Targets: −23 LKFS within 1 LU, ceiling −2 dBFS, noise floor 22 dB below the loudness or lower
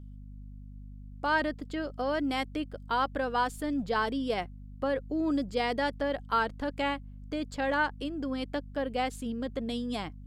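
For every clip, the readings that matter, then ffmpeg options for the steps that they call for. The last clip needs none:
mains hum 50 Hz; hum harmonics up to 250 Hz; level of the hum −42 dBFS; integrated loudness −31.5 LKFS; sample peak −16.0 dBFS; target loudness −23.0 LKFS
→ -af "bandreject=frequency=50:width_type=h:width=6,bandreject=frequency=100:width_type=h:width=6,bandreject=frequency=150:width_type=h:width=6,bandreject=frequency=200:width_type=h:width=6,bandreject=frequency=250:width_type=h:width=6"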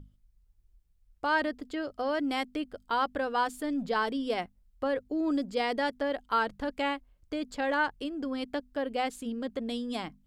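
mains hum none found; integrated loudness −32.0 LKFS; sample peak −16.5 dBFS; target loudness −23.0 LKFS
→ -af "volume=9dB"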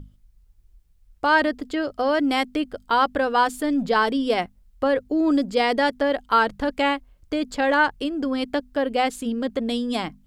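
integrated loudness −23.0 LKFS; sample peak −7.5 dBFS; background noise floor −58 dBFS

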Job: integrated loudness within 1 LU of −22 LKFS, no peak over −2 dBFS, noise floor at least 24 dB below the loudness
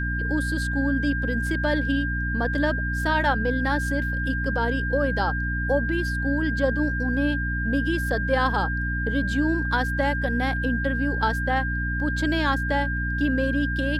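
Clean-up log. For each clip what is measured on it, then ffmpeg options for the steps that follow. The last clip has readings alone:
mains hum 60 Hz; hum harmonics up to 300 Hz; level of the hum −25 dBFS; interfering tone 1,600 Hz; level of the tone −28 dBFS; integrated loudness −24.5 LKFS; sample peak −9.0 dBFS; target loudness −22.0 LKFS
→ -af "bandreject=frequency=60:width_type=h:width=6,bandreject=frequency=120:width_type=h:width=6,bandreject=frequency=180:width_type=h:width=6,bandreject=frequency=240:width_type=h:width=6,bandreject=frequency=300:width_type=h:width=6"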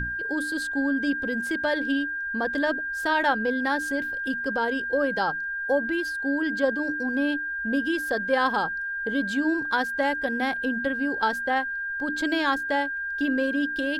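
mains hum none found; interfering tone 1,600 Hz; level of the tone −28 dBFS
→ -af "bandreject=frequency=1600:width=30"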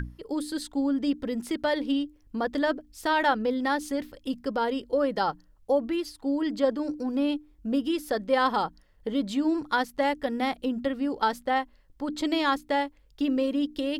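interfering tone none found; integrated loudness −28.0 LKFS; sample peak −11.5 dBFS; target loudness −22.0 LKFS
→ -af "volume=6dB"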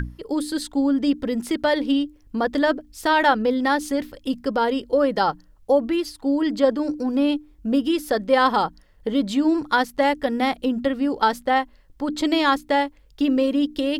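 integrated loudness −22.0 LKFS; sample peak −5.5 dBFS; background noise floor −53 dBFS

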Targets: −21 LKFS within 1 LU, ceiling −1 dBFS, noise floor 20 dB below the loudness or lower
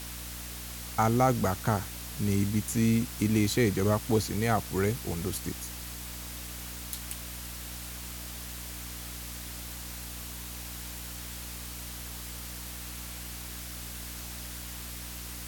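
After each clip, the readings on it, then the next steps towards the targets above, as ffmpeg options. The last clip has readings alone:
mains hum 60 Hz; hum harmonics up to 300 Hz; level of the hum −41 dBFS; background noise floor −41 dBFS; target noise floor −53 dBFS; integrated loudness −32.5 LKFS; sample peak −10.5 dBFS; target loudness −21.0 LKFS
→ -af "bandreject=frequency=60:width_type=h:width=4,bandreject=frequency=120:width_type=h:width=4,bandreject=frequency=180:width_type=h:width=4,bandreject=frequency=240:width_type=h:width=4,bandreject=frequency=300:width_type=h:width=4"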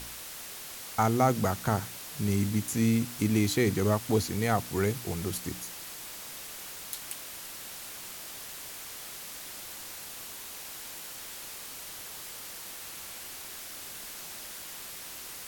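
mains hum none found; background noise floor −43 dBFS; target noise floor −53 dBFS
→ -af "afftdn=noise_reduction=10:noise_floor=-43"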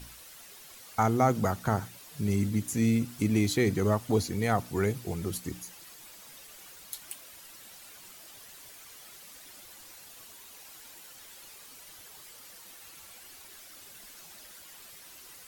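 background noise floor −50 dBFS; integrated loudness −29.0 LKFS; sample peak −10.0 dBFS; target loudness −21.0 LKFS
→ -af "volume=8dB"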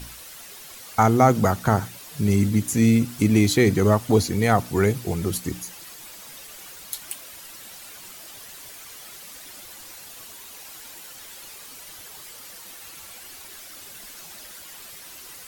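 integrated loudness −21.0 LKFS; sample peak −2.0 dBFS; background noise floor −42 dBFS

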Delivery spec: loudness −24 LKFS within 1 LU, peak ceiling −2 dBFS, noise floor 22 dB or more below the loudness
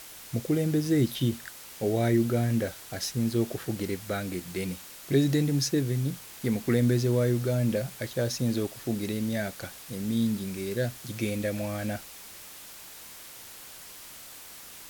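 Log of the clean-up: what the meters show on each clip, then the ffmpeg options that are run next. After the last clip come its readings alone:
background noise floor −46 dBFS; target noise floor −51 dBFS; integrated loudness −28.5 LKFS; sample peak −12.5 dBFS; target loudness −24.0 LKFS
→ -af "afftdn=noise_reduction=6:noise_floor=-46"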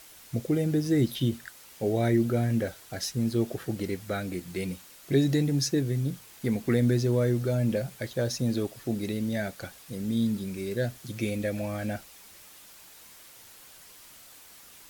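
background noise floor −51 dBFS; integrated loudness −29.0 LKFS; sample peak −12.5 dBFS; target loudness −24.0 LKFS
→ -af "volume=5dB"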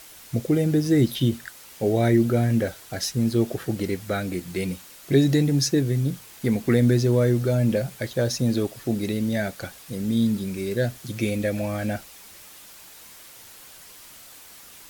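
integrated loudness −24.0 LKFS; sample peak −7.5 dBFS; background noise floor −46 dBFS

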